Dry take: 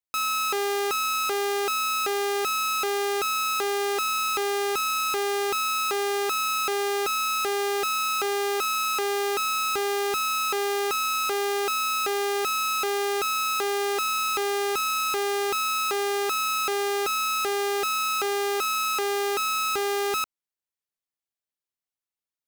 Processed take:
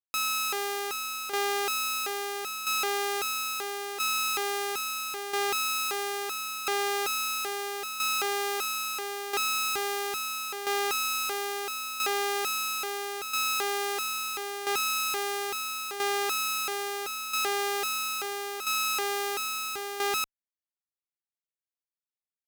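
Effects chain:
shaped tremolo saw down 0.75 Hz, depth 40%
harmonic generator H 3 −12 dB, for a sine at −21 dBFS

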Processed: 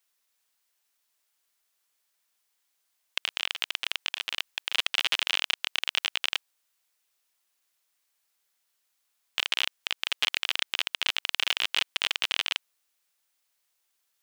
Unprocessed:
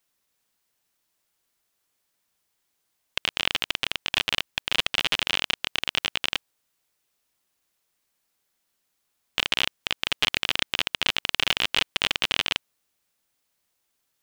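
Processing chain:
high-pass filter 980 Hz 6 dB per octave
0:03.26–0:04.73: compressor whose output falls as the input rises −29 dBFS, ratio −0.5
brickwall limiter −9 dBFS, peak gain reduction 3 dB

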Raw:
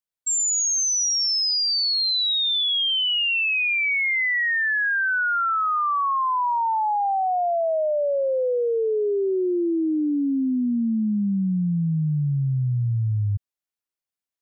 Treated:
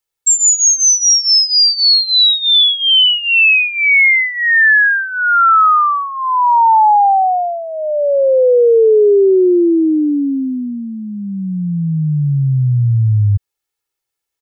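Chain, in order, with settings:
comb filter 2.3 ms, depth 73%
level +9 dB

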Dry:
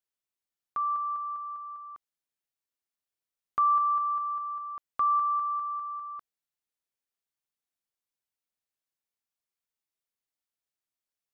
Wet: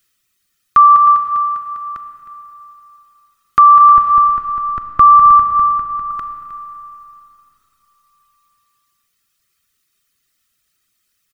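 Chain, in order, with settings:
0:03.92–0:06.11: spectral tilt −3 dB per octave
reverb reduction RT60 1.5 s
flat-topped bell 680 Hz −12.5 dB 1.3 octaves
comb filter 1.6 ms, depth 37%
single-tap delay 312 ms −15 dB
four-comb reverb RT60 3.5 s, combs from 29 ms, DRR 8 dB
boost into a limiter +27 dB
level −1 dB

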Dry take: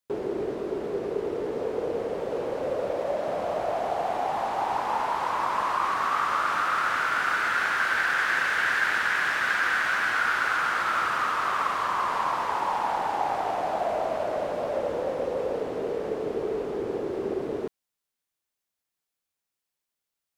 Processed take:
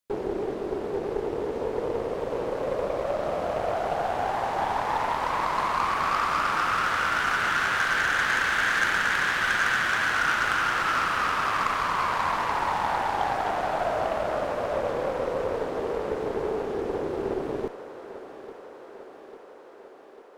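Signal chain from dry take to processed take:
feedback echo with a high-pass in the loop 847 ms, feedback 72%, high-pass 190 Hz, level −13.5 dB
harmonic generator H 2 −14 dB, 8 −21 dB, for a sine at −10 dBFS

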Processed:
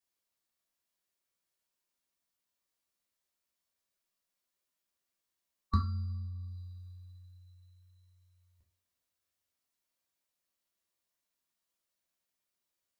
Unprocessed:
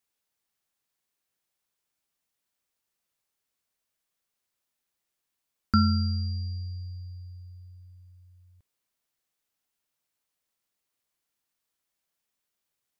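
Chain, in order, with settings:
formants moved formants −3 semitones
coupled-rooms reverb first 0.33 s, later 2.4 s, from −28 dB, DRR −1 dB
level −7.5 dB

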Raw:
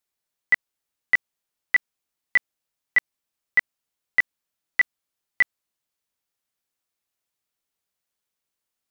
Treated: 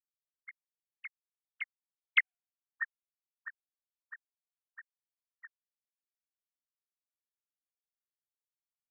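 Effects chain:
three sine waves on the formant tracks
source passing by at 0:02.28, 26 m/s, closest 1.8 metres

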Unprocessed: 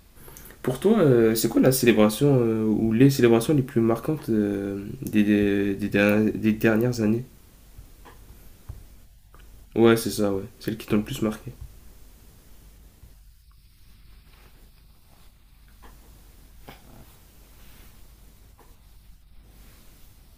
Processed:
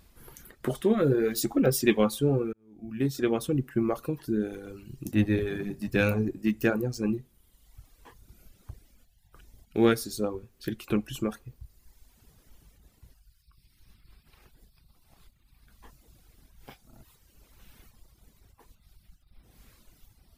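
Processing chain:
0:02.53–0:03.65: fade in
0:05.15–0:06.48: sub-octave generator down 1 octave, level −5 dB
reverb reduction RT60 1.3 s
level −4 dB

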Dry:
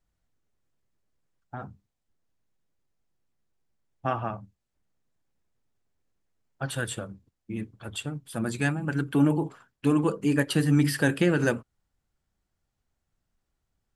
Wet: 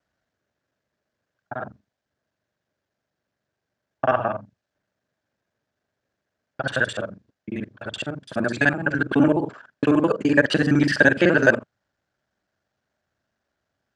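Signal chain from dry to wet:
reversed piece by piece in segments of 42 ms
loudspeaker in its box 130–6,300 Hz, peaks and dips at 160 Hz −5 dB, 610 Hz +9 dB, 1,600 Hz +9 dB
level +5 dB

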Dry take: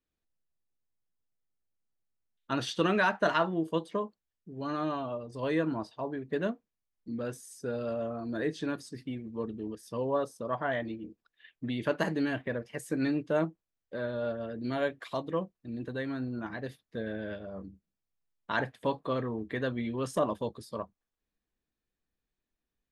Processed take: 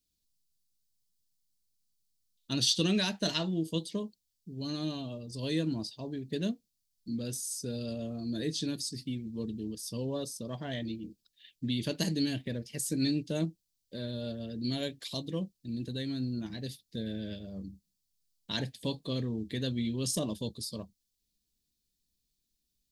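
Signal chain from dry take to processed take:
drawn EQ curve 200 Hz 0 dB, 1,300 Hz −21 dB, 4,500 Hz +11 dB, 6,500 Hz +9 dB
level +3.5 dB

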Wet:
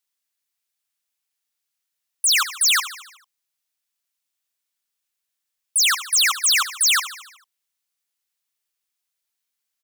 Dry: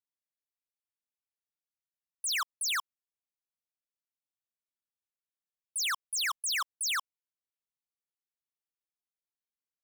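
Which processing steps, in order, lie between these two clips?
tilt shelving filter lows −6.5 dB, about 1,100 Hz
repeating echo 74 ms, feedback 58%, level −14 dB
level +8.5 dB

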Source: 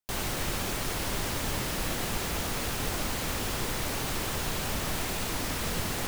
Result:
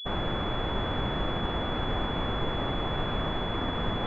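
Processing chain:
phase-vocoder stretch with locked phases 0.67×
switching amplifier with a slow clock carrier 3,400 Hz
level +4.5 dB

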